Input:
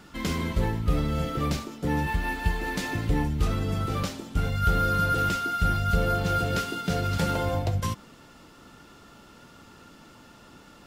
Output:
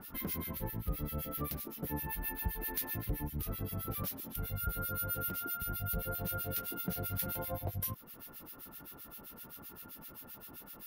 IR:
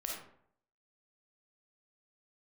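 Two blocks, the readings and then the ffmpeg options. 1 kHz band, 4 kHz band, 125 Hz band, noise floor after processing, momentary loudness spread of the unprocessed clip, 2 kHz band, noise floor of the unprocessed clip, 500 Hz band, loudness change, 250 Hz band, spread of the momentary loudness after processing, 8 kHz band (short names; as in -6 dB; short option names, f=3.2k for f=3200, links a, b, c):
-15.5 dB, -13.5 dB, -13.5 dB, -53 dBFS, 6 LU, -15.0 dB, -52 dBFS, -13.5 dB, -11.0 dB, -13.0 dB, 12 LU, -4.0 dB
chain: -filter_complex "[0:a]aexciter=amount=11.9:drive=9.1:freq=11k,acompressor=threshold=-35dB:ratio=2.5,acrossover=split=1600[a][b];[a]aeval=exprs='val(0)*(1-1/2+1/2*cos(2*PI*7.7*n/s))':c=same[c];[b]aeval=exprs='val(0)*(1-1/2-1/2*cos(2*PI*7.7*n/s))':c=same[d];[c][d]amix=inputs=2:normalize=0"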